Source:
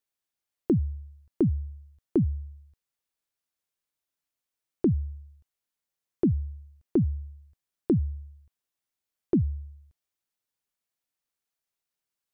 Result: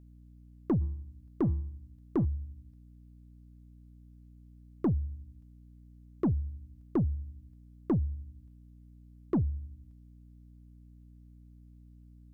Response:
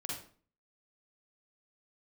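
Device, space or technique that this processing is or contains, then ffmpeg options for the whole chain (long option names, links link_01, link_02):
valve amplifier with mains hum: -filter_complex "[0:a]aeval=exprs='(tanh(10*val(0)+0.1)-tanh(0.1))/10':channel_layout=same,aeval=exprs='val(0)+0.00282*(sin(2*PI*60*n/s)+sin(2*PI*2*60*n/s)/2+sin(2*PI*3*60*n/s)/3+sin(2*PI*4*60*n/s)/4+sin(2*PI*5*60*n/s)/5)':channel_layout=same,asplit=3[link_01][link_02][link_03];[link_01]afade=type=out:start_time=0.8:duration=0.02[link_04];[link_02]bandreject=frequency=166.5:width_type=h:width=4,bandreject=frequency=333:width_type=h:width=4,bandreject=frequency=499.5:width_type=h:width=4,bandreject=frequency=666:width_type=h:width=4,bandreject=frequency=832.5:width_type=h:width=4,bandreject=frequency=999:width_type=h:width=4,bandreject=frequency=1165.5:width_type=h:width=4,bandreject=frequency=1332:width_type=h:width=4,bandreject=frequency=1498.5:width_type=h:width=4,bandreject=frequency=1665:width_type=h:width=4,bandreject=frequency=1831.5:width_type=h:width=4,bandreject=frequency=1998:width_type=h:width=4,bandreject=frequency=2164.5:width_type=h:width=4,bandreject=frequency=2331:width_type=h:width=4,bandreject=frequency=2497.5:width_type=h:width=4,bandreject=frequency=2664:width_type=h:width=4,bandreject=frequency=2830.5:width_type=h:width=4,bandreject=frequency=2997:width_type=h:width=4,bandreject=frequency=3163.5:width_type=h:width=4,bandreject=frequency=3330:width_type=h:width=4,bandreject=frequency=3496.5:width_type=h:width=4,bandreject=frequency=3663:width_type=h:width=4,afade=type=in:start_time=0.8:duration=0.02,afade=type=out:start_time=2.24:duration=0.02[link_05];[link_03]afade=type=in:start_time=2.24:duration=0.02[link_06];[link_04][link_05][link_06]amix=inputs=3:normalize=0,volume=-1.5dB"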